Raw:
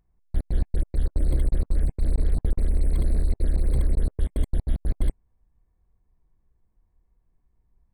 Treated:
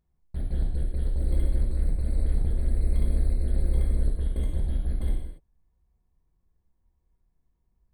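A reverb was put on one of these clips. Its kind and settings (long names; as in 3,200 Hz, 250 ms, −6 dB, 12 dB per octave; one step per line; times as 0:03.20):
reverb whose tail is shaped and stops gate 310 ms falling, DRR −2.5 dB
level −7.5 dB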